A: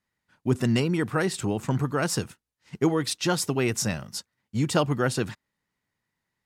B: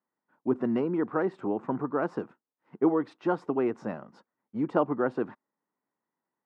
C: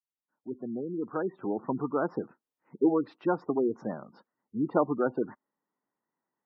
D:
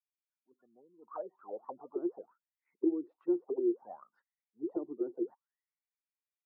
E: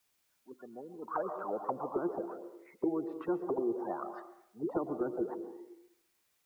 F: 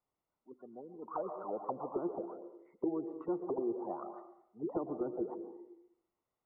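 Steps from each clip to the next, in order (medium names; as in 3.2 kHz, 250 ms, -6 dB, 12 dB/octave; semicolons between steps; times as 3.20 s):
Chebyshev band-pass 270–1100 Hz, order 2
fade-in on the opening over 1.83 s; spectral gate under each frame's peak -20 dB strong
auto-wah 350–2400 Hz, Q 17, down, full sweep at -24 dBFS; trim +3.5 dB
reverberation RT60 0.75 s, pre-delay 108 ms, DRR 14.5 dB; spectrum-flattening compressor 2:1
Savitzky-Golay filter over 65 samples; trim -2.5 dB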